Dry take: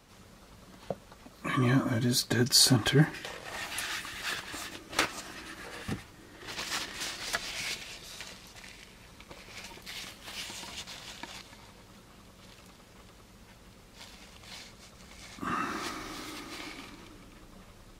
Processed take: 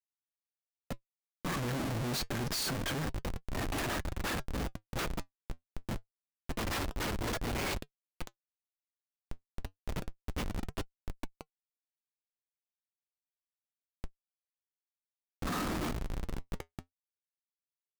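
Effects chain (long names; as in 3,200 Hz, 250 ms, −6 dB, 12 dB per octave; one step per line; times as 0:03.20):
dynamic equaliser 420 Hz, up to −4 dB, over −51 dBFS, Q 3.2
comparator with hysteresis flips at −33 dBFS
flanger 0.27 Hz, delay 2.6 ms, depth 3.5 ms, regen −72%
level +5.5 dB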